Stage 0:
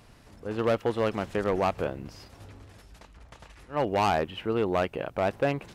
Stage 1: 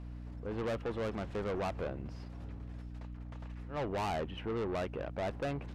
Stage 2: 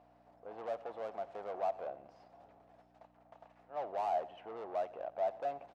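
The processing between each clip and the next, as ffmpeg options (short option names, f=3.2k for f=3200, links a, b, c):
-af "aemphasis=mode=reproduction:type=75fm,aeval=exprs='val(0)+0.0112*(sin(2*PI*60*n/s)+sin(2*PI*2*60*n/s)/2+sin(2*PI*3*60*n/s)/3+sin(2*PI*4*60*n/s)/4+sin(2*PI*5*60*n/s)/5)':c=same,asoftclip=type=tanh:threshold=-27.5dB,volume=-4dB"
-af "crystalizer=i=7.5:c=0,bandpass=f=700:t=q:w=5.6:csg=0,aecho=1:1:89|178|267|356:0.119|0.063|0.0334|0.0177,volume=4dB"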